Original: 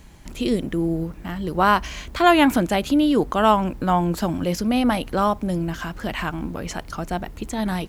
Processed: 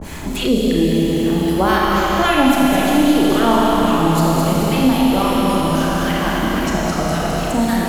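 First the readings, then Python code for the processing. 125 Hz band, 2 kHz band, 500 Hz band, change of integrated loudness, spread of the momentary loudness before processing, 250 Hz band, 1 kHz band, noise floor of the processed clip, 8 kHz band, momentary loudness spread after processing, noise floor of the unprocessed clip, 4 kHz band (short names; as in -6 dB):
+7.0 dB, +5.5 dB, +5.5 dB, +6.0 dB, 12 LU, +7.0 dB, +4.0 dB, -22 dBFS, +10.0 dB, 5 LU, -41 dBFS, +7.5 dB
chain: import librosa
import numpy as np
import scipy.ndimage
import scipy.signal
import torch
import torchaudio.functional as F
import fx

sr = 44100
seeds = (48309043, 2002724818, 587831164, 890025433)

p1 = fx.reverse_delay(x, sr, ms=336, wet_db=-12.5)
p2 = fx.high_shelf(p1, sr, hz=6600.0, db=6.0)
p3 = fx.vibrato(p2, sr, rate_hz=0.68, depth_cents=96.0)
p4 = np.clip(p3, -10.0 ** (-15.0 / 20.0), 10.0 ** (-15.0 / 20.0))
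p5 = p3 + (p4 * 10.0 ** (-5.5 / 20.0))
p6 = fx.harmonic_tremolo(p5, sr, hz=3.7, depth_pct=100, crossover_hz=1100.0)
p7 = fx.echo_alternate(p6, sr, ms=105, hz=830.0, feedback_pct=73, wet_db=-3.5)
p8 = fx.rev_schroeder(p7, sr, rt60_s=3.6, comb_ms=27, drr_db=-4.5)
p9 = fx.band_squash(p8, sr, depth_pct=70)
y = p9 * 10.0 ** (-1.0 / 20.0)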